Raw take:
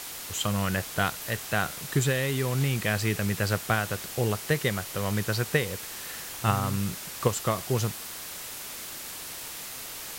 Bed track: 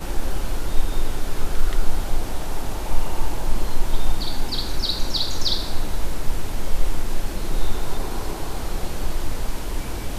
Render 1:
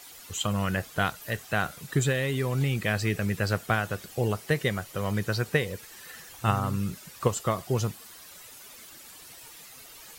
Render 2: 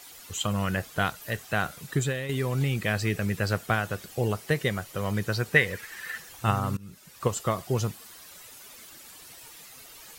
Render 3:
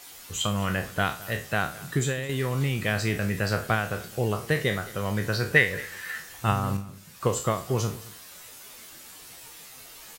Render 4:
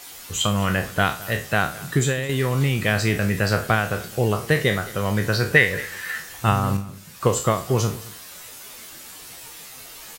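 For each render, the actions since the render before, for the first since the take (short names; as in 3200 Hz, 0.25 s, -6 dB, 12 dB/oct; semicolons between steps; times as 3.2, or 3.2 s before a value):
denoiser 12 dB, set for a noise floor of -39 dBFS
1.88–2.29 fade out, to -7 dB; 5.56–6.18 bell 1800 Hz +12.5 dB 0.99 oct; 6.77–7.37 fade in, from -22.5 dB
spectral trails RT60 0.35 s; echo 0.215 s -19.5 dB
gain +5.5 dB; limiter -3 dBFS, peak gain reduction 2 dB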